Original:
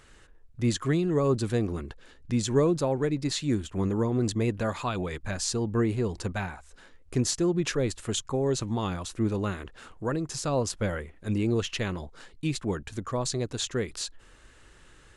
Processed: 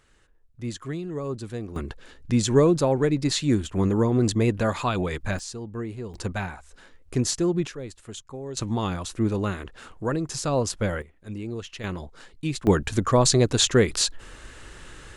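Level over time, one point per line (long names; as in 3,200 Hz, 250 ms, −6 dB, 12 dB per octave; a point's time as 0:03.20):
−6.5 dB
from 0:01.76 +5 dB
from 0:05.39 −7 dB
from 0:06.14 +2 dB
from 0:07.67 −9 dB
from 0:08.57 +3 dB
from 0:11.02 −7 dB
from 0:11.84 +1 dB
from 0:12.67 +11 dB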